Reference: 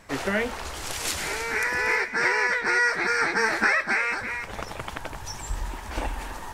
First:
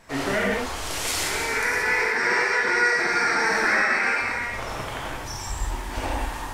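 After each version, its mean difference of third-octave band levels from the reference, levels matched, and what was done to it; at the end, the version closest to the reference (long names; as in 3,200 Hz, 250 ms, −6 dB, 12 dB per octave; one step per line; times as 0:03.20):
3.5 dB: reverb whose tail is shaped and stops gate 210 ms flat, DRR −5 dB
in parallel at −2 dB: brickwall limiter −13 dBFS, peak gain reduction 9 dB
on the sum: level −7.5 dB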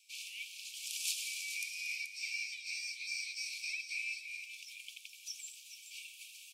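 22.5 dB: Chebyshev high-pass filter 2,300 Hz, order 10
single-tap delay 430 ms −10.5 dB
level −6 dB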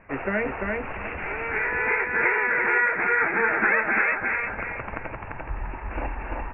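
10.0 dB: Chebyshev low-pass filter 2,700 Hz, order 8
repeating echo 344 ms, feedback 26%, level −3 dB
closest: first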